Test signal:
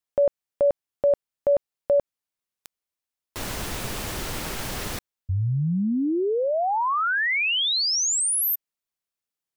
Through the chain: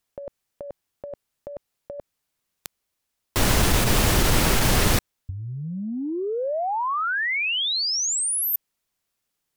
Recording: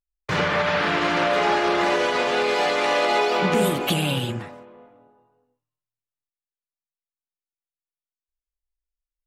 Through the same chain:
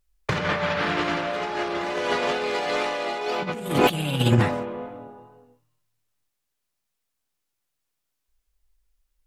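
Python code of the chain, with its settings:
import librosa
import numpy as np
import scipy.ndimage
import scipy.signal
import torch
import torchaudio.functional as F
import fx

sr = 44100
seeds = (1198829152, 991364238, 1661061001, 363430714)

y = fx.low_shelf(x, sr, hz=210.0, db=5.0)
y = fx.over_compress(y, sr, threshold_db=-27.0, ratio=-0.5)
y = fx.wow_flutter(y, sr, seeds[0], rate_hz=2.1, depth_cents=18.0)
y = y * 10.0 ** (5.0 / 20.0)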